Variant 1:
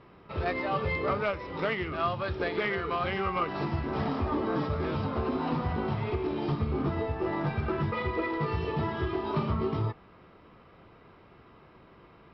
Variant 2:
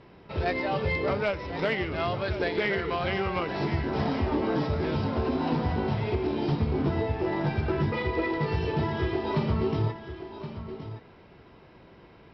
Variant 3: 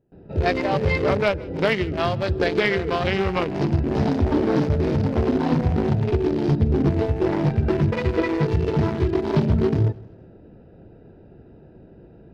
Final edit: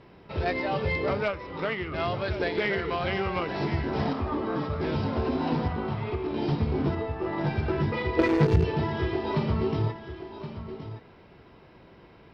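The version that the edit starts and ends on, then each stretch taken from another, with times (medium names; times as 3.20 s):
2
1.28–1.94 s: from 1
4.13–4.81 s: from 1
5.68–6.34 s: from 1
6.95–7.38 s: from 1
8.19–8.64 s: from 3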